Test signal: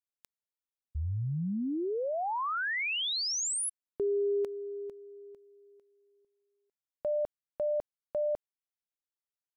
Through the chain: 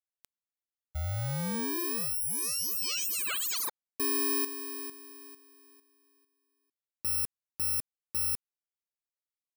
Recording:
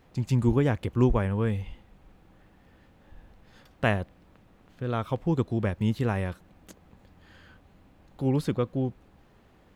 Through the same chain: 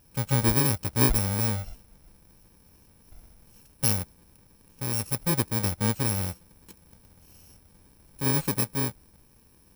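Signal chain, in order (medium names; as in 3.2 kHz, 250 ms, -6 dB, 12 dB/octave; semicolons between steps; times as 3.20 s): bit-reversed sample order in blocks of 64 samples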